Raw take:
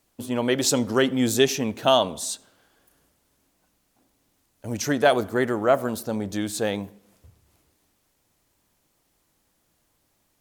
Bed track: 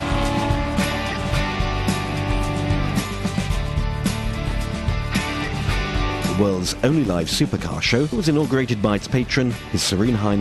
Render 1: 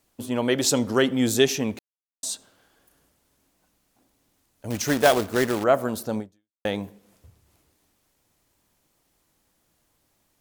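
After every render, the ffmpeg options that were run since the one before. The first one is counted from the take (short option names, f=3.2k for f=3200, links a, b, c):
-filter_complex "[0:a]asettb=1/sr,asplit=3[a][b][c];[a]atrim=end=4.704[d];[b]atrim=start=4.7:end=5.64,asetpts=PTS-STARTPTS,afade=t=in:d=0.004:c=qsin,afade=t=out:st=0.936:d=0.004:c=qsin,acrusher=bits=2:mode=log:mix=0:aa=0.000001[e];[c]atrim=start=5.636[f];[d][e]acrossfade=d=0.004:c1=hsin:c2=qsin[g];[g][f]acrossfade=d=0.004:c1=qsin:c2=hsin,asplit=4[h][i][j][k];[h]atrim=end=1.79,asetpts=PTS-STARTPTS,afade=t=out:st=1.786:d=0.004:c=hsin[l];[i]atrim=start=1.79:end=2.23,asetpts=PTS-STARTPTS,volume=0[m];[j]atrim=start=2.23:end=6.65,asetpts=PTS-STARTPTS,afade=t=in:d=0.004:c=hsin,afade=t=out:st=3.96:d=0.46:c=exp[n];[k]atrim=start=6.65,asetpts=PTS-STARTPTS,afade=t=in:d=0.004:c=hsin[o];[l][m][n][o]concat=n=4:v=0:a=1"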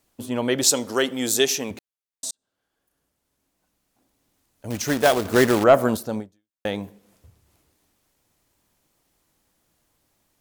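-filter_complex "[0:a]asettb=1/sr,asplit=3[a][b][c];[a]atrim=end=0.634[d];[b]atrim=start=0.63:end=1.71,asetpts=PTS-STARTPTS,afade=t=in:d=0.004:c=qsin,afade=t=out:st=1.076:d=0.004:c=qsin,bass=f=250:g=-11,treble=f=4k:g=6[e];[c]atrim=start=1.706[f];[d][e]acrossfade=d=0.004:c1=hsin:c2=qsin[g];[g][f]acrossfade=d=0.004:c1=qsin:c2=hsin,asettb=1/sr,asplit=3[h][i][j];[h]atrim=end=5.254[k];[i]atrim=start=5.25:end=5.97,asetpts=PTS-STARTPTS,afade=t=in:d=0.004:c=qsin,afade=t=out:st=0.716:d=0.004:c=qsin,acontrast=58[l];[j]atrim=start=5.966[m];[k][l]acrossfade=d=0.004:c1=hsin:c2=qsin[n];[n][m]acrossfade=d=0.004:c1=qsin:c2=hsin,asplit=2[o][p];[o]atrim=end=2.31,asetpts=PTS-STARTPTS,afade=t=out:st=2.306:d=0.004:c=hsin[q];[p]atrim=start=2.31,asetpts=PTS-STARTPTS,afade=t=in:d=2.35[r];[q][r]concat=n=2:v=0:a=1"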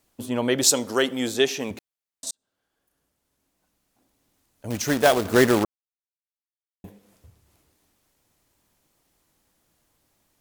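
-filter_complex "[0:a]asettb=1/sr,asplit=3[a][b][c];[a]atrim=end=1.094[d];[b]atrim=start=1.09:end=2.27,asetpts=PTS-STARTPTS,afade=t=in:d=0.004:c=qsin,afade=t=out:st=1.176:d=0.004:c=qsin,acrossover=split=3900[e][f];[f]acompressor=threshold=-35dB:ratio=4:attack=1:release=60[g];[e][g]amix=inputs=2:normalize=0[h];[c]atrim=start=2.266[i];[d][h]acrossfade=d=0.004:c1=hsin:c2=qsin[j];[j][i]acrossfade=d=0.004:c1=qsin:c2=hsin,asplit=3[k][l][m];[k]atrim=end=5.65,asetpts=PTS-STARTPTS,afade=t=out:st=5.646:d=0.004:c=hsin[n];[l]atrim=start=5.65:end=6.84,asetpts=PTS-STARTPTS,volume=0[o];[m]atrim=start=6.84,asetpts=PTS-STARTPTS,afade=t=in:d=0.004:c=hsin[p];[n][o][p]concat=n=3:v=0:a=1"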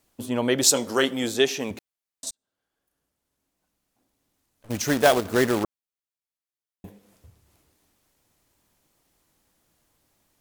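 -filter_complex "[0:a]asettb=1/sr,asplit=3[a][b][c];[a]atrim=end=0.734[d];[b]atrim=start=0.73:end=1.24,asetpts=PTS-STARTPTS,afade=t=in:d=0.004:c=qsin,afade=t=out:st=0.506:d=0.004:c=qsin,asplit=2[e][f];[f]adelay=22,volume=-8.5dB[g];[e][g]amix=inputs=2:normalize=0,atrim=end_sample=22491[h];[c]atrim=start=1.236[i];[d][h]acrossfade=d=0.004:c1=hsin:c2=qsin[j];[j][i]acrossfade=d=0.004:c1=qsin:c2=hsin,asplit=3[k][l][m];[k]afade=t=out:st=2.29:d=0.02[n];[l]aeval=exprs='(tanh(282*val(0)+0.75)-tanh(0.75))/282':c=same,afade=t=in:st=2.29:d=0.02,afade=t=out:st=4.69:d=0.02[o];[m]afade=t=in:st=4.69:d=0.02[p];[n][o][p]amix=inputs=3:normalize=0,asplit=3[q][r][s];[q]atrim=end=5.202[t];[r]atrim=start=5.198:end=5.642,asetpts=PTS-STARTPTS,volume=-4dB[u];[s]atrim=start=5.638[v];[t][u]acrossfade=d=0.004:c1=hsin:c2=hsin[w];[w][v]acrossfade=d=0.004:c1=hsin:c2=hsin"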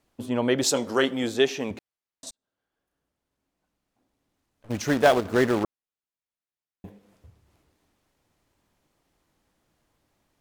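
-af "lowpass=f=3.1k:p=1"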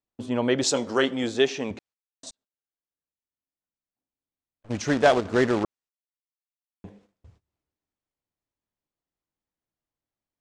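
-af "agate=range=-22dB:threshold=-56dB:ratio=16:detection=peak,lowpass=f=8.1k:w=0.5412,lowpass=f=8.1k:w=1.3066"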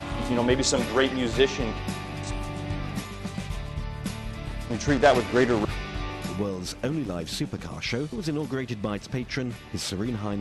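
-filter_complex "[1:a]volume=-10.5dB[a];[0:a][a]amix=inputs=2:normalize=0"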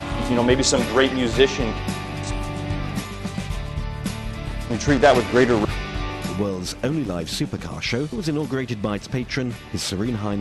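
-af "volume=5dB,alimiter=limit=-1dB:level=0:latency=1"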